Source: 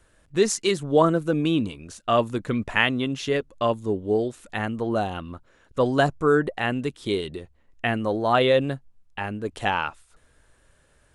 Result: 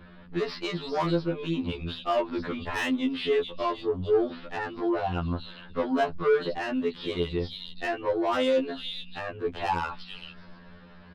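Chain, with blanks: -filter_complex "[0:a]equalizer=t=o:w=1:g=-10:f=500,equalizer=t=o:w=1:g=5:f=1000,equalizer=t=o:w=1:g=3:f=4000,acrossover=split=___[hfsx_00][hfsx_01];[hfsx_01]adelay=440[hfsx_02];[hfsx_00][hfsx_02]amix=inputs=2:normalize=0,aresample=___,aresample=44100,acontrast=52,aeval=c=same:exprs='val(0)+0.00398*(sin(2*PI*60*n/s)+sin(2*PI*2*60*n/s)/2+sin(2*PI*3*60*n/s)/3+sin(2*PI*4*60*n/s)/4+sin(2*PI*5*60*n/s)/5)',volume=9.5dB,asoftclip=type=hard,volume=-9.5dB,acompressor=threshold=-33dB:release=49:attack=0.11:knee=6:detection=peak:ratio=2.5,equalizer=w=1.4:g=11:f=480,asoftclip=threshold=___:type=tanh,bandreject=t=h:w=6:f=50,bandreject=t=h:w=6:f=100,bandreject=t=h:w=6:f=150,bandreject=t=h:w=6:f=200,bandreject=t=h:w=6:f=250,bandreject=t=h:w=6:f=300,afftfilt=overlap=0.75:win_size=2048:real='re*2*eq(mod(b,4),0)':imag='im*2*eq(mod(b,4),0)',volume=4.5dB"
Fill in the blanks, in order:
4300, 11025, -21.5dB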